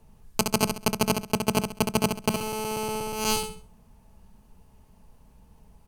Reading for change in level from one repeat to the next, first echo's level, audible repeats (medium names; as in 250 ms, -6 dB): -10.5 dB, -6.0 dB, 3